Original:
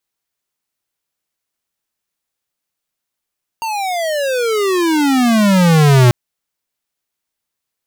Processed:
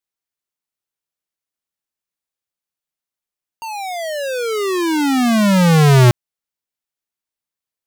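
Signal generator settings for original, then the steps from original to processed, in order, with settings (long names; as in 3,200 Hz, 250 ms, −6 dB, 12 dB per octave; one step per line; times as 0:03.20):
pitch glide with a swell square, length 2.49 s, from 926 Hz, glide −35.5 semitones, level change +13 dB, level −7.5 dB
expander for the loud parts 1.5 to 1, over −26 dBFS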